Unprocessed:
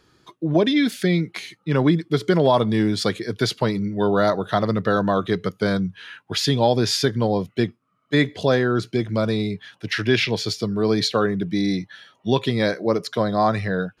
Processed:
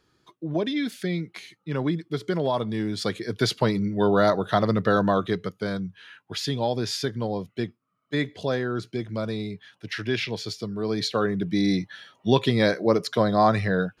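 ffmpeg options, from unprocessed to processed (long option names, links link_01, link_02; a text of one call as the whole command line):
ffmpeg -i in.wav -af "volume=6.5dB,afade=type=in:start_time=2.86:duration=0.67:silence=0.446684,afade=type=out:start_time=5.07:duration=0.48:silence=0.473151,afade=type=in:start_time=10.88:duration=0.89:silence=0.421697" out.wav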